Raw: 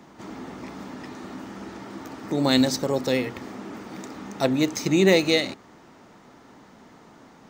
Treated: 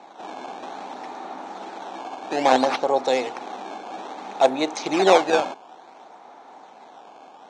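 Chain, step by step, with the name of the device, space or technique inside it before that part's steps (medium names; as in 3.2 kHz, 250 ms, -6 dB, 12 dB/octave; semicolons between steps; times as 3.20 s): circuit-bent sampling toy (decimation with a swept rate 13×, swing 160% 0.59 Hz; cabinet simulation 550–5700 Hz, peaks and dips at 770 Hz +10 dB, 1.3 kHz -4 dB, 1.9 kHz -8 dB, 2.9 kHz -6 dB, 4.9 kHz -10 dB); trim +6.5 dB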